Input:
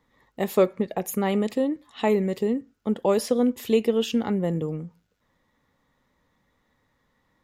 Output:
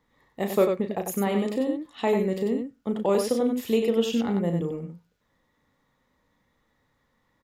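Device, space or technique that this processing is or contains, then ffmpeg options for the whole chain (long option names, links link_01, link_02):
slapback doubling: -filter_complex "[0:a]asplit=3[link_01][link_02][link_03];[link_02]adelay=35,volume=-8dB[link_04];[link_03]adelay=95,volume=-5.5dB[link_05];[link_01][link_04][link_05]amix=inputs=3:normalize=0,volume=-2.5dB"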